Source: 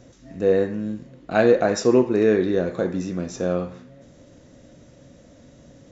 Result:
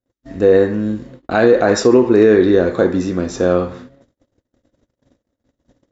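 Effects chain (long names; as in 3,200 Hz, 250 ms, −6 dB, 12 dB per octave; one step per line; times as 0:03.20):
noise gate −44 dBFS, range −47 dB
graphic EQ with 15 bands 160 Hz −10 dB, 630 Hz −4 dB, 2,500 Hz −5 dB, 6,300 Hz −7 dB
boost into a limiter +13 dB
level −1 dB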